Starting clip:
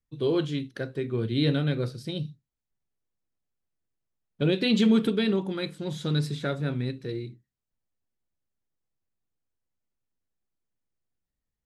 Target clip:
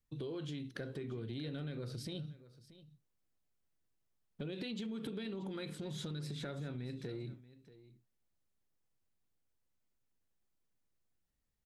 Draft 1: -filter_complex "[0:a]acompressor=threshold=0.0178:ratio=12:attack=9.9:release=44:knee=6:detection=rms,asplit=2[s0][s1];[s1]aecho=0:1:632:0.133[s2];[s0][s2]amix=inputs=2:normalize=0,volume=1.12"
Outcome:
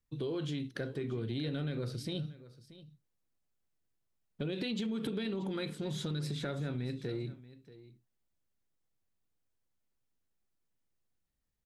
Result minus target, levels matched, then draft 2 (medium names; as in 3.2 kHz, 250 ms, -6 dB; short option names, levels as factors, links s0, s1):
compression: peak gain reduction -6 dB
-filter_complex "[0:a]acompressor=threshold=0.00841:ratio=12:attack=9.9:release=44:knee=6:detection=rms,asplit=2[s0][s1];[s1]aecho=0:1:632:0.133[s2];[s0][s2]amix=inputs=2:normalize=0,volume=1.12"